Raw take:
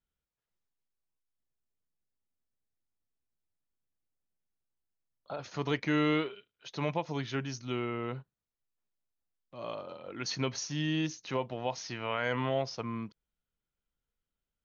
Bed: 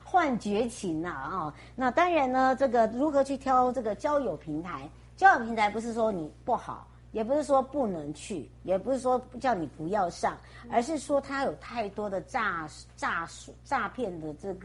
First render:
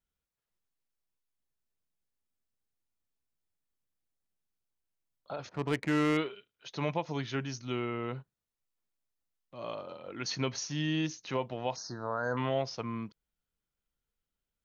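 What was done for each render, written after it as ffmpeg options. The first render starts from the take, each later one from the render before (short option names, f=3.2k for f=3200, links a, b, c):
-filter_complex "[0:a]asettb=1/sr,asplit=3[a][b][c];[a]atrim=end=5.494[d];[b]atrim=start=5.49:end=6.17,asetpts=PTS-STARTPTS,afade=t=in:d=0.004:c=qsin,afade=t=out:st=0.676:d=0.004:c=qsin,adynamicsmooth=sensitivity=5.5:basefreq=890[e];[c]atrim=start=6.166[f];[d][e]acrossfade=d=0.004:c1=hsin:c2=qsin[g];[g][f]acrossfade=d=0.004:c1=qsin:c2=hsin,asettb=1/sr,asplit=3[h][i][j];[h]atrim=end=11.764[k];[i]atrim=start=11.76:end=12.37,asetpts=PTS-STARTPTS,afade=t=in:d=0.004:c=qsin,afade=t=out:st=0.606:d=0.004:c=qsin,asuperstop=centerf=2600:order=12:qfactor=1.1[l];[j]atrim=start=12.366[m];[k][l]acrossfade=d=0.004:c1=hsin:c2=qsin[n];[n][m]acrossfade=d=0.004:c1=qsin:c2=hsin"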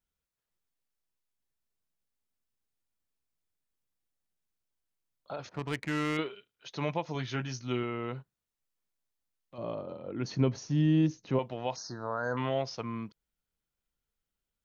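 -filter_complex "[0:a]asettb=1/sr,asplit=3[a][b][c];[a]atrim=end=5.594[d];[b]atrim=start=5.59:end=6.19,asetpts=PTS-STARTPTS,afade=t=in:d=0.004:c=qsin,afade=t=out:st=0.596:d=0.004:c=qsin,equalizer=f=430:t=o:w=2.3:g=-5.5[e];[c]atrim=start=6.186[f];[d][e]acrossfade=d=0.004:c1=hsin:c2=qsin[g];[g][f]acrossfade=d=0.004:c1=qsin:c2=hsin,asettb=1/sr,asplit=3[h][i][j];[h]atrim=end=7.134[k];[i]atrim=start=7.13:end=7.83,asetpts=PTS-STARTPTS,afade=t=in:d=0.004:c=qsin,afade=t=out:st=0.696:d=0.004:c=qsin,asplit=2[l][m];[m]adelay=16,volume=-7dB[n];[l][n]amix=inputs=2:normalize=0,atrim=end_sample=30870[o];[j]atrim=start=7.826[p];[k][o]acrossfade=d=0.004:c1=hsin:c2=qsin[q];[q][p]acrossfade=d=0.004:c1=qsin:c2=hsin,asettb=1/sr,asplit=3[r][s][t];[r]atrim=end=9.584[u];[s]atrim=start=9.58:end=11.39,asetpts=PTS-STARTPTS,afade=t=in:d=0.004:c=qsin,afade=t=out:st=1.806:d=0.004:c=qsin,tiltshelf=f=810:g=9[v];[t]atrim=start=11.386[w];[u][v]acrossfade=d=0.004:c1=hsin:c2=qsin[x];[x][w]acrossfade=d=0.004:c1=qsin:c2=hsin"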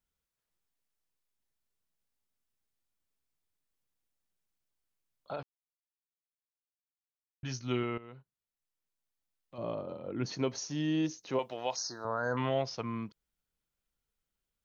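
-filter_complex "[0:a]asettb=1/sr,asplit=3[a][b][c];[a]atrim=end=10.324[d];[b]atrim=start=10.32:end=12.05,asetpts=PTS-STARTPTS,afade=t=in:d=0.004:c=qsin,afade=t=out:st=1.726:d=0.004:c=qsin,bass=f=250:g=-13,treble=f=4k:g=8[e];[c]atrim=start=12.046[f];[d][e]acrossfade=d=0.004:c1=hsin:c2=qsin[g];[g][f]acrossfade=d=0.004:c1=qsin:c2=hsin,asplit=4[h][i][j][k];[h]atrim=end=5.43,asetpts=PTS-STARTPTS,afade=t=out:st=5.426:d=0.004:c=hsin[l];[i]atrim=start=5.43:end=7.43,asetpts=PTS-STARTPTS,volume=0[m];[j]atrim=start=7.43:end=7.98,asetpts=PTS-STARTPTS,afade=t=in:d=0.004:c=hsin,afade=t=out:st=0.546:d=0.004:c=hsin:silence=0.158489[n];[k]atrim=start=7.98,asetpts=PTS-STARTPTS,afade=t=in:d=1.64:silence=0.158489[o];[l][m][n][o]concat=n=4:v=0:a=1"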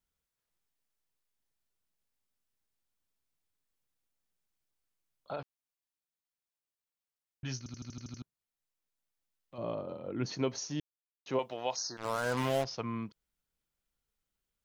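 -filter_complex "[0:a]asettb=1/sr,asplit=3[a][b][c];[a]atrim=end=11.974[d];[b]atrim=start=11.97:end=12.65,asetpts=PTS-STARTPTS,afade=t=in:d=0.004:c=qsin,afade=t=out:st=0.676:d=0.004:c=qsin,acrusher=bits=5:mix=0:aa=0.5[e];[c]atrim=start=12.646[f];[d][e]acrossfade=d=0.004:c1=hsin:c2=qsin[g];[g][f]acrossfade=d=0.004:c1=qsin:c2=hsin,asplit=11[h][i][j][k][l][m][n][o][p][q][r];[h]atrim=end=7.662[s];[i]atrim=start=7.578:end=7.662[t];[j]atrim=start=7.578:end=7.662[u];[k]atrim=start=7.578:end=7.662[v];[l]atrim=start=7.578:end=7.662[w];[m]atrim=start=7.578:end=7.662[x];[n]atrim=start=7.578:end=7.662[y];[o]atrim=start=7.578:end=7.662[z];[p]atrim=start=8.218:end=10.8,asetpts=PTS-STARTPTS,afade=t=out:st=2.578:d=0.004:c=hsin[aa];[q]atrim=start=10.8:end=11.26,asetpts=PTS-STARTPTS,volume=0[ab];[r]atrim=start=11.26,asetpts=PTS-STARTPTS,afade=t=in:d=0.004:c=hsin[ac];[s][t]acrossfade=d=0.004:c1=hsin:c2=hsin[ad];[ad][u]acrossfade=d=0.004:c1=hsin:c2=hsin[ae];[ae][v]acrossfade=d=0.004:c1=hsin:c2=hsin[af];[af][w]acrossfade=d=0.004:c1=hsin:c2=hsin[ag];[ag][x]acrossfade=d=0.004:c1=hsin:c2=hsin[ah];[ah][y]acrossfade=d=0.004:c1=hsin:c2=hsin[ai];[ai][z]acrossfade=d=0.004:c1=hsin:c2=hsin[aj];[aa][ab][ac]concat=n=3:v=0:a=1[ak];[aj][ak]acrossfade=d=0.004:c1=hsin:c2=hsin"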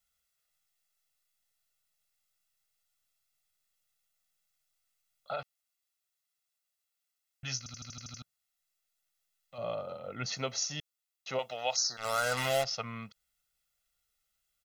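-af "tiltshelf=f=870:g=-6.5,aecho=1:1:1.5:0.73"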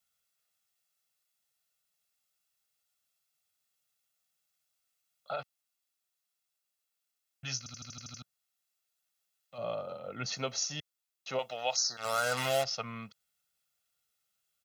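-af "highpass=100,bandreject=f=2k:w=17"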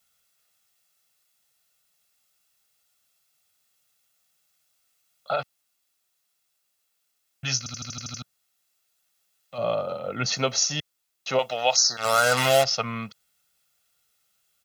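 -af "volume=10.5dB"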